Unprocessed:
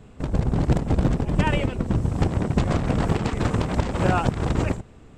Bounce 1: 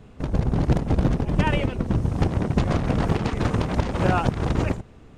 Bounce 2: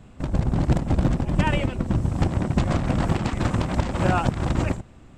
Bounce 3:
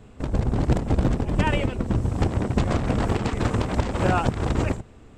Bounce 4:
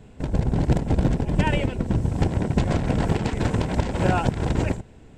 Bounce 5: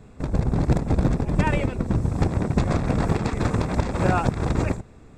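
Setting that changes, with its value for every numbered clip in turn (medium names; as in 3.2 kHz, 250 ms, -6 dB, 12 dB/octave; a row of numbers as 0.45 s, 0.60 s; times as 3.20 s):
band-stop, frequency: 7.7 kHz, 440 Hz, 160 Hz, 1.2 kHz, 3 kHz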